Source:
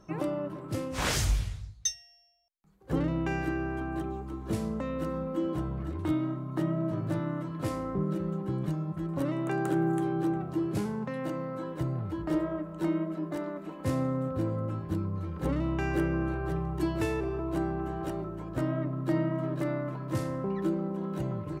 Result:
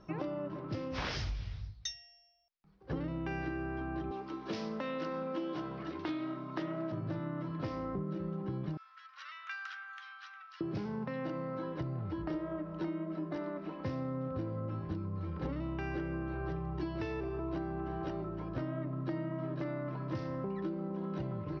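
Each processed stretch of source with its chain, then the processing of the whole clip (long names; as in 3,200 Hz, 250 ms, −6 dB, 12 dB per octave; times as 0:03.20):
0:04.11–0:06.92: high-pass filter 240 Hz + high-shelf EQ 2,000 Hz +10 dB + highs frequency-modulated by the lows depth 0.15 ms
0:08.77–0:10.61: elliptic high-pass filter 1,300 Hz, stop band 80 dB + high-shelf EQ 6,400 Hz +8 dB
whole clip: elliptic low-pass filter 5,400 Hz, stop band 40 dB; downward compressor, threshold −34 dBFS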